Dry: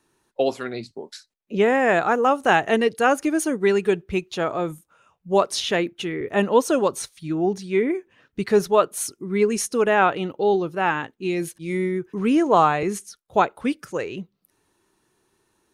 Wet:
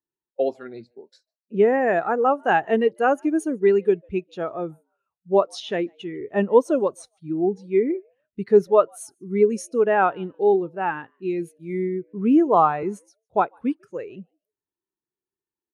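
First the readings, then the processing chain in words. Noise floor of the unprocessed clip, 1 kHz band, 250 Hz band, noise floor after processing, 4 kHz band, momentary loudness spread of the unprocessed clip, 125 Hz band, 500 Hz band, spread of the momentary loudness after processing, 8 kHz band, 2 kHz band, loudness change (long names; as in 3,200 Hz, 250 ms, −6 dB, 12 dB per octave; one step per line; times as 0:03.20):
−73 dBFS, −1.5 dB, −0.5 dB, below −85 dBFS, −10.5 dB, 13 LU, −3.5 dB, +1.0 dB, 15 LU, −11.5 dB, −5.0 dB, 0.0 dB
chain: echo with shifted repeats 148 ms, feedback 31%, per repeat +120 Hz, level −23.5 dB
every bin expanded away from the loudest bin 1.5 to 1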